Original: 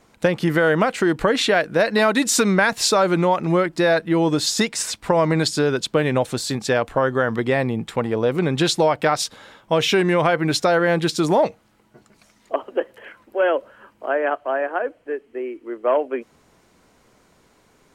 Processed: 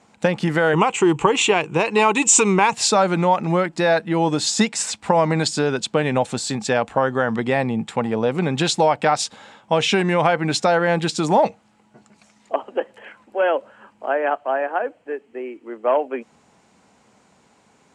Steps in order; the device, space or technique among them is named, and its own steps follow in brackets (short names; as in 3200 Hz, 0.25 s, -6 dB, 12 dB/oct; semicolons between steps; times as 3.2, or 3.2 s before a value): car door speaker (speaker cabinet 86–9500 Hz, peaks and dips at 210 Hz +6 dB, 350 Hz -3 dB, 820 Hz +7 dB, 2600 Hz +3 dB, 7500 Hz +5 dB); 0.73–2.74 ripple EQ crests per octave 0.7, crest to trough 14 dB; gain -1 dB